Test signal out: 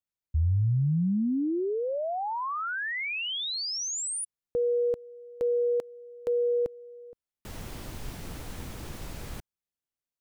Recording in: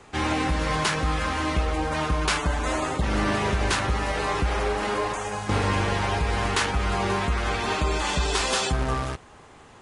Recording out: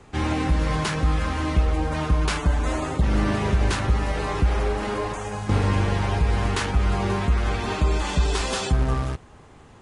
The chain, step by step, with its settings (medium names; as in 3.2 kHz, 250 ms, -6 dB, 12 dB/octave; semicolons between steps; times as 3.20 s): bass shelf 320 Hz +9.5 dB; trim -3.5 dB